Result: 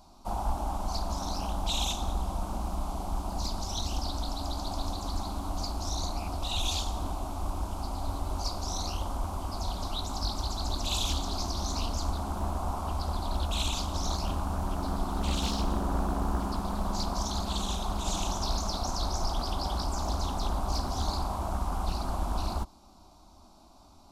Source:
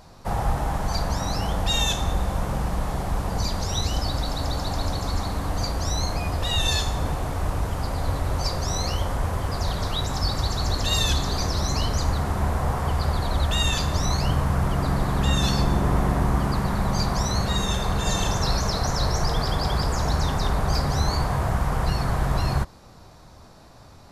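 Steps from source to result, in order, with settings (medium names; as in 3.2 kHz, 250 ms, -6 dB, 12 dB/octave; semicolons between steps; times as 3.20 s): static phaser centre 480 Hz, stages 6; loudspeaker Doppler distortion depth 0.72 ms; trim -4.5 dB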